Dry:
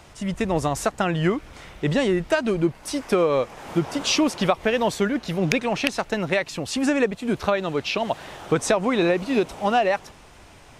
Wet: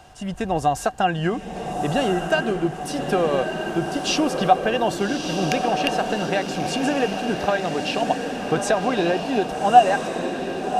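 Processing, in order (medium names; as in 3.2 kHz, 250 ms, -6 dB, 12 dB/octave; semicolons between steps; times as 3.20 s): peaking EQ 2.1 kHz -5.5 dB 0.71 oct; small resonant body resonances 750/1600/2800 Hz, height 15 dB, ringing for 65 ms; on a send: echo that smears into a reverb 1230 ms, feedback 55%, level -5 dB; on the sum: trim -2 dB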